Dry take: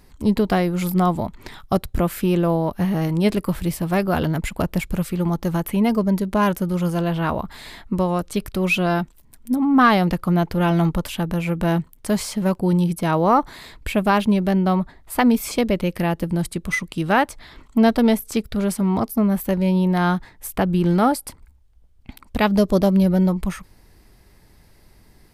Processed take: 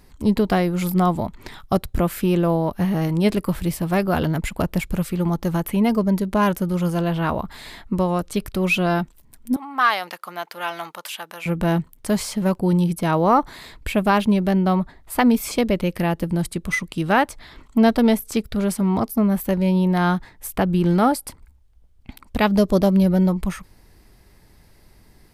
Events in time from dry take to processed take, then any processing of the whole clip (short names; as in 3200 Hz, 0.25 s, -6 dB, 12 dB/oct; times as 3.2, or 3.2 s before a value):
9.56–11.46 HPF 940 Hz